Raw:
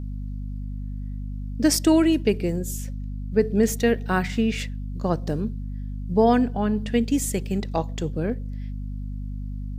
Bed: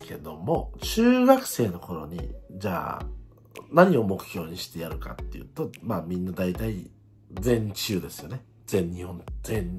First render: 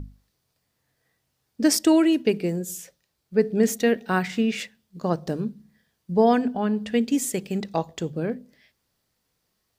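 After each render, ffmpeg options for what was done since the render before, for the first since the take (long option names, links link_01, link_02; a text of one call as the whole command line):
ffmpeg -i in.wav -af "bandreject=frequency=50:width_type=h:width=6,bandreject=frequency=100:width_type=h:width=6,bandreject=frequency=150:width_type=h:width=6,bandreject=frequency=200:width_type=h:width=6,bandreject=frequency=250:width_type=h:width=6" out.wav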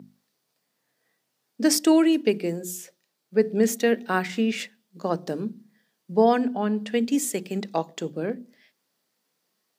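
ffmpeg -i in.wav -af "highpass=frequency=180:width=0.5412,highpass=frequency=180:width=1.3066,bandreject=frequency=60:width_type=h:width=6,bandreject=frequency=120:width_type=h:width=6,bandreject=frequency=180:width_type=h:width=6,bandreject=frequency=240:width_type=h:width=6,bandreject=frequency=300:width_type=h:width=6,bandreject=frequency=360:width_type=h:width=6" out.wav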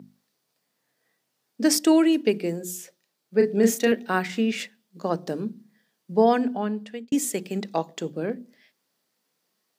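ffmpeg -i in.wav -filter_complex "[0:a]asettb=1/sr,asplit=3[link_01][link_02][link_03];[link_01]atrim=end=3.374[link_04];[link_02]atrim=start=3.37:end=3.92,asetpts=PTS-STARTPTS,afade=type=in:duration=0.004:curve=qsin,afade=type=out:start_time=0.546:duration=0.004:curve=qsin,asplit=2[link_05][link_06];[link_06]adelay=35,volume=-5dB[link_07];[link_05][link_07]amix=inputs=2:normalize=0,atrim=end_sample=24255[link_08];[link_03]atrim=start=3.916[link_09];[link_04][link_08]acrossfade=duration=0.004:curve1=hsin:curve2=qsin[link_10];[link_10][link_09]acrossfade=duration=0.004:curve1=qsin:curve2=hsin,asplit=2[link_11][link_12];[link_11]atrim=end=7.12,asetpts=PTS-STARTPTS,afade=type=out:start_time=6.53:duration=0.59[link_13];[link_12]atrim=start=7.12,asetpts=PTS-STARTPTS,afade=type=in:duration=0.004:curve=hsin[link_14];[link_13][link_14]concat=n=2:v=0:a=1" out.wav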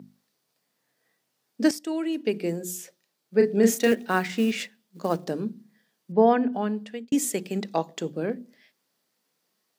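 ffmpeg -i in.wav -filter_complex "[0:a]asettb=1/sr,asplit=3[link_01][link_02][link_03];[link_01]atrim=end=3.734[link_04];[link_02]atrim=start=3.73:end=5.25,asetpts=PTS-STARTPTS,afade=type=in:duration=0.004:curve=qsin,afade=type=out:start_time=1.516:duration=0.004:curve=qsin,acrusher=bits=6:mode=log:mix=0:aa=0.000001[link_05];[link_03]atrim=start=5.246[link_06];[link_04][link_05]acrossfade=duration=0.004:curve1=hsin:curve2=qsin[link_07];[link_07][link_06]acrossfade=duration=0.004:curve1=qsin:curve2=hsin,asettb=1/sr,asplit=3[link_08][link_09][link_10];[link_08]atrim=end=6.124[link_11];[link_09]atrim=start=6.12:end=6.53,asetpts=PTS-STARTPTS,afade=type=in:duration=0.004:curve=qsin,afade=type=out:start_time=0.406:duration=0.004:curve=qsin,lowpass=2600[link_12];[link_10]atrim=start=6.526[link_13];[link_11][link_12]acrossfade=duration=0.004:curve1=hsin:curve2=qsin[link_14];[link_14][link_13]acrossfade=duration=0.004:curve1=qsin:curve2=hsin,asplit=2[link_15][link_16];[link_15]atrim=end=1.71,asetpts=PTS-STARTPTS,afade=type=out:start_time=1.706:duration=0.004:curve=hsin:silence=0.199526[link_17];[link_16]atrim=start=1.71,asetpts=PTS-STARTPTS,afade=type=in:duration=0.79:curve=qua:silence=0.199526[link_18];[link_17][link_18]concat=n=2:v=0:a=1" out.wav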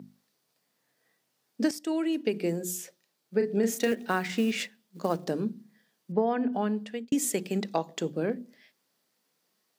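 ffmpeg -i in.wav -af "acompressor=threshold=-22dB:ratio=6" out.wav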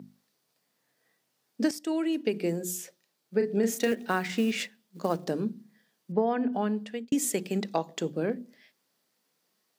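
ffmpeg -i in.wav -af anull out.wav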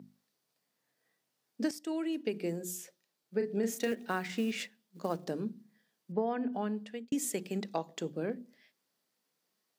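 ffmpeg -i in.wav -af "volume=-6dB" out.wav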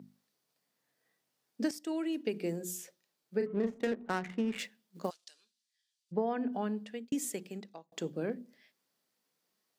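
ffmpeg -i in.wav -filter_complex "[0:a]asettb=1/sr,asplit=3[link_01][link_02][link_03];[link_01]atrim=end=3.464[link_04];[link_02]atrim=start=3.46:end=4.59,asetpts=PTS-STARTPTS,afade=type=in:duration=0.004:curve=qsin,afade=type=out:start_time=1.126:duration=0.004:curve=qsin,adynamicsmooth=sensitivity=7.5:basefreq=520[link_05];[link_03]atrim=start=4.586[link_06];[link_04][link_05]acrossfade=duration=0.004:curve1=hsin:curve2=qsin[link_07];[link_07][link_06]acrossfade=duration=0.004:curve1=qsin:curve2=hsin,asplit=3[link_08][link_09][link_10];[link_08]afade=type=out:start_time=5.09:duration=0.02[link_11];[link_09]asuperpass=centerf=5500:order=4:qfactor=0.93,afade=type=in:start_time=5.09:duration=0.02,afade=type=out:start_time=6.11:duration=0.02[link_12];[link_10]afade=type=in:start_time=6.11:duration=0.02[link_13];[link_11][link_12][link_13]amix=inputs=3:normalize=0,asplit=2[link_14][link_15];[link_14]atrim=end=7.92,asetpts=PTS-STARTPTS,afade=type=out:start_time=7.06:duration=0.86[link_16];[link_15]atrim=start=7.92,asetpts=PTS-STARTPTS,afade=type=in:duration=0.004:curve=hsin[link_17];[link_16][link_17]concat=n=2:v=0:a=1" out.wav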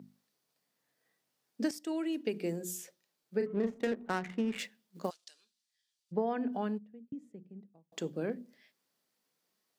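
ffmpeg -i in.wav -filter_complex "[0:a]asplit=3[link_01][link_02][link_03];[link_01]afade=type=out:start_time=6.77:duration=0.02[link_04];[link_02]bandpass=frequency=120:width_type=q:width=1.4,afade=type=in:start_time=6.77:duration=0.02,afade=type=out:start_time=7.91:duration=0.02[link_05];[link_03]afade=type=in:start_time=7.91:duration=0.02[link_06];[link_04][link_05][link_06]amix=inputs=3:normalize=0" out.wav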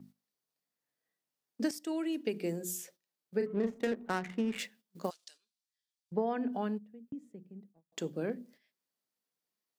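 ffmpeg -i in.wav -af "agate=range=-11dB:threshold=-59dB:ratio=16:detection=peak,highshelf=frequency=8800:gain=4" out.wav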